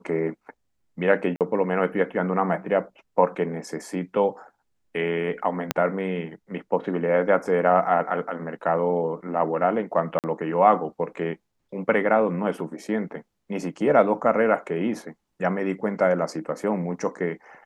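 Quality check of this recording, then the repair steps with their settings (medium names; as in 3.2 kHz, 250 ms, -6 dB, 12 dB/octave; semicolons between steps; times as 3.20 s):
1.36–1.41 s: dropout 48 ms
5.71 s: pop -6 dBFS
10.19–10.24 s: dropout 48 ms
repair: de-click; interpolate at 1.36 s, 48 ms; interpolate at 10.19 s, 48 ms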